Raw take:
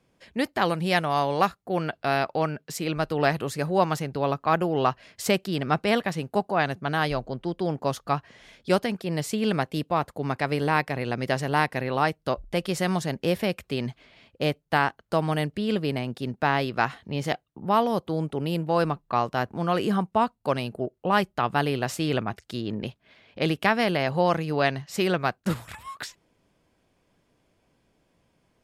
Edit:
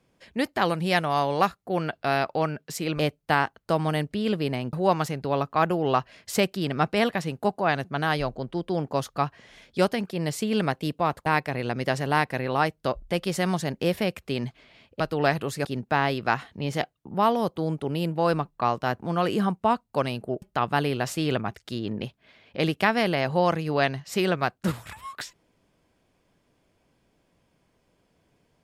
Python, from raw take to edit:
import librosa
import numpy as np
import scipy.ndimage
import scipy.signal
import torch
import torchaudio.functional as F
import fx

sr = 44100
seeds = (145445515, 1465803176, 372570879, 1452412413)

y = fx.edit(x, sr, fx.swap(start_s=2.99, length_s=0.65, other_s=14.42, other_length_s=1.74),
    fx.cut(start_s=10.17, length_s=0.51),
    fx.cut(start_s=20.93, length_s=0.31), tone=tone)